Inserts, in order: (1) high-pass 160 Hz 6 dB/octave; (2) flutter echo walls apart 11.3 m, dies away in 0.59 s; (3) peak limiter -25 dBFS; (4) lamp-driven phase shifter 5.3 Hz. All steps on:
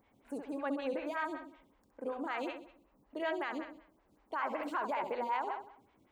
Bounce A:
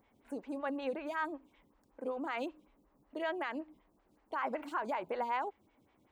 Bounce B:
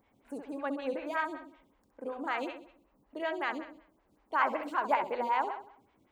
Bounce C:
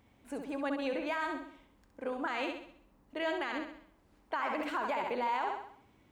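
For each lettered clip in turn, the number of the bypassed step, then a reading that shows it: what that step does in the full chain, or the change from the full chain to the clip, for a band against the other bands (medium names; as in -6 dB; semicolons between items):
2, momentary loudness spread change -2 LU; 3, mean gain reduction 1.5 dB; 4, 4 kHz band +4.5 dB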